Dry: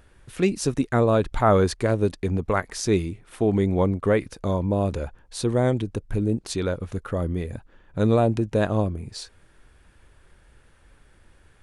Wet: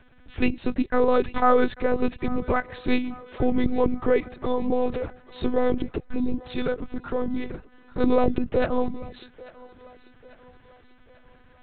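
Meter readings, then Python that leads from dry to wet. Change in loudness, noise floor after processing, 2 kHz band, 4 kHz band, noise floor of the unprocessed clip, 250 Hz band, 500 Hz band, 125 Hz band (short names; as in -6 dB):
-1.5 dB, -54 dBFS, +0.5 dB, -4.5 dB, -57 dBFS, -1.0 dB, -1.0 dB, -12.0 dB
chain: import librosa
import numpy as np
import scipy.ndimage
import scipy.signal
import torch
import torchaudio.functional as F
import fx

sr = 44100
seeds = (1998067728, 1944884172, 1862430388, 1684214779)

y = fx.lpc_monotone(x, sr, seeds[0], pitch_hz=250.0, order=8)
y = fx.echo_thinned(y, sr, ms=843, feedback_pct=56, hz=370.0, wet_db=-18.5)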